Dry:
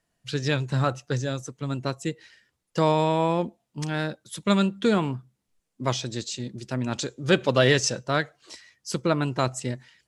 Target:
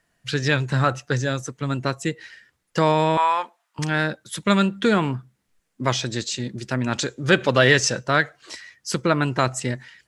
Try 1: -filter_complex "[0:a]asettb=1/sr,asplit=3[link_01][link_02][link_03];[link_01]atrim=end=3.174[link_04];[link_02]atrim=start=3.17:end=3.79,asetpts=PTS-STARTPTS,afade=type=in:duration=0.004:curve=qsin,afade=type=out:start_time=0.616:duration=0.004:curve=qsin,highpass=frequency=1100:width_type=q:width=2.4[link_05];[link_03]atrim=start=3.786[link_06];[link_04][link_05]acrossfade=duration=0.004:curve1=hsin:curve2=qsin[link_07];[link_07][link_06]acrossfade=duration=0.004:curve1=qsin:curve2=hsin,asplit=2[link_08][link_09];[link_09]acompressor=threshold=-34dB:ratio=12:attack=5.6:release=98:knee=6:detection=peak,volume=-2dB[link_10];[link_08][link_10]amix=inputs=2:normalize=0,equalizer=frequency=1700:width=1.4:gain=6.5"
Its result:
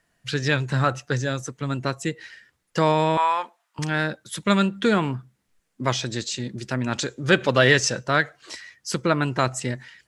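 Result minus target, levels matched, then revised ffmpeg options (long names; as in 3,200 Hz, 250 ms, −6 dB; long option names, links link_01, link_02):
downward compressor: peak gain reduction +7.5 dB
-filter_complex "[0:a]asettb=1/sr,asplit=3[link_01][link_02][link_03];[link_01]atrim=end=3.174[link_04];[link_02]atrim=start=3.17:end=3.79,asetpts=PTS-STARTPTS,afade=type=in:duration=0.004:curve=qsin,afade=type=out:start_time=0.616:duration=0.004:curve=qsin,highpass=frequency=1100:width_type=q:width=2.4[link_05];[link_03]atrim=start=3.786[link_06];[link_04][link_05]acrossfade=duration=0.004:curve1=hsin:curve2=qsin[link_07];[link_07][link_06]acrossfade=duration=0.004:curve1=qsin:curve2=hsin,asplit=2[link_08][link_09];[link_09]acompressor=threshold=-26dB:ratio=12:attack=5.6:release=98:knee=6:detection=peak,volume=-2dB[link_10];[link_08][link_10]amix=inputs=2:normalize=0,equalizer=frequency=1700:width=1.4:gain=6.5"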